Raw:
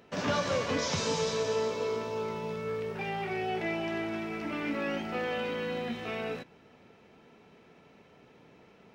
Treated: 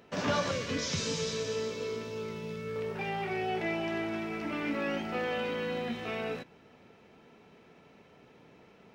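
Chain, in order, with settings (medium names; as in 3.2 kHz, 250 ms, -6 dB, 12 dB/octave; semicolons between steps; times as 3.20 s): 0.51–2.76 s: peaking EQ 820 Hz -13.5 dB 1.1 oct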